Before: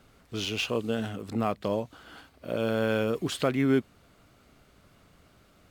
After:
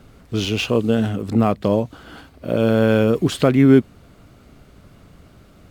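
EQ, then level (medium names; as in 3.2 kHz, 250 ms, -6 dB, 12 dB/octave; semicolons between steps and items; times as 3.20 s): bass shelf 480 Hz +8.5 dB; +6.0 dB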